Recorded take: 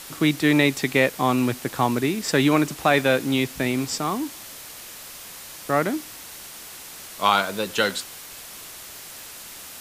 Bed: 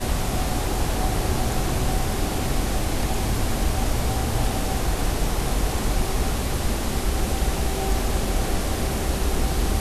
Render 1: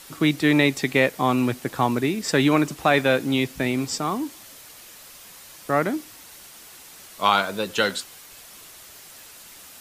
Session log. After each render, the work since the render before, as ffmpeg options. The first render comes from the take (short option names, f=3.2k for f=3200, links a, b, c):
-af "afftdn=nr=6:nf=-40"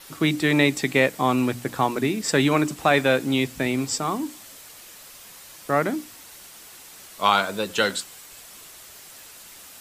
-af "bandreject=f=60:t=h:w=6,bandreject=f=120:t=h:w=6,bandreject=f=180:t=h:w=6,bandreject=f=240:t=h:w=6,bandreject=f=300:t=h:w=6,adynamicequalizer=threshold=0.00224:dfrequency=7800:dqfactor=6.4:tfrequency=7800:tqfactor=6.4:attack=5:release=100:ratio=0.375:range=3:mode=boostabove:tftype=bell"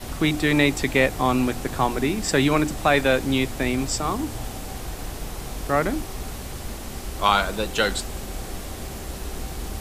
-filter_complex "[1:a]volume=-9.5dB[a];[0:a][a]amix=inputs=2:normalize=0"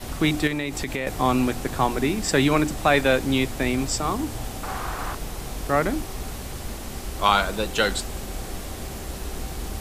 -filter_complex "[0:a]asettb=1/sr,asplit=3[a][b][c];[a]atrim=end=0.474[d];[b]atrim=start=0.47:end=1.07,asetpts=PTS-STARTPTS,afade=t=in:d=0.004:c=qsin,afade=t=out:st=0.596:d=0.004:c=qsin,acompressor=threshold=-24dB:ratio=5:attack=3.2:release=140:knee=1:detection=peak[e];[c]atrim=start=1.066[f];[d][e]acrossfade=d=0.004:c1=hsin:c2=qsin[g];[g][f]acrossfade=d=0.004:c1=qsin:c2=hsin,asettb=1/sr,asplit=3[h][i][j];[h]atrim=end=4.634[k];[i]atrim=start=4.63:end=5.15,asetpts=PTS-STARTPTS,afade=t=in:d=0.004:c=qsin,afade=t=out:st=0.516:d=0.004:c=qsin,equalizer=f=1.2k:t=o:w=1.2:g=15[l];[j]atrim=start=5.146[m];[k][l]acrossfade=d=0.004:c1=hsin:c2=qsin[n];[n][m]acrossfade=d=0.004:c1=qsin:c2=hsin"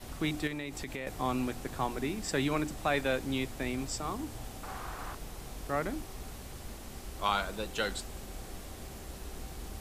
-af "volume=-11dB"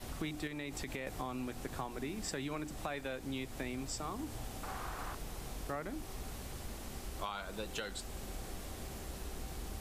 -af "alimiter=limit=-20.5dB:level=0:latency=1:release=466,acompressor=threshold=-37dB:ratio=4"